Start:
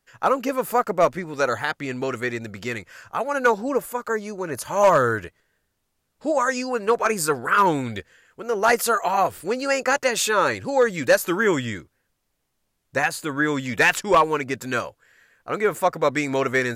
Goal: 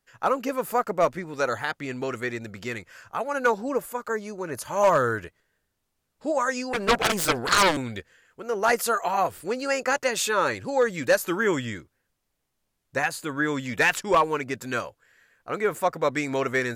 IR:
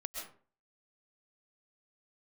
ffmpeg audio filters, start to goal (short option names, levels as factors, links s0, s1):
-filter_complex "[0:a]asettb=1/sr,asplit=3[s0][s1][s2];[s0]atrim=end=6.734[s3];[s1]atrim=start=6.73:end=7.77,asetpts=PTS-STARTPTS,afade=t=in:d=0.004:c=qsin,afade=t=out:st=1.036:d=0.004:c=qsin,aeval=exprs='0.398*(cos(1*acos(clip(val(0)/0.398,-1,1)))-cos(1*PI/2))+0.178*(cos(7*acos(clip(val(0)/0.398,-1,1)))-cos(7*PI/2))':c=same[s4];[s2]atrim=start=7.766[s5];[s3][s4]acrossfade=d=0.004:c1=hsin:c2=qsin[s6];[s6][s5]acrossfade=d=0.004:c1=qsin:c2=hsin,volume=0.668"